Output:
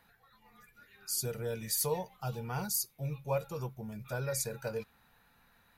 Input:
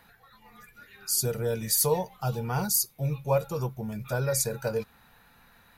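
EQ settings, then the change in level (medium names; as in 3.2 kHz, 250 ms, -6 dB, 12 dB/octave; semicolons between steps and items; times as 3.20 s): dynamic bell 2.4 kHz, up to +4 dB, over -48 dBFS, Q 1.1; -8.0 dB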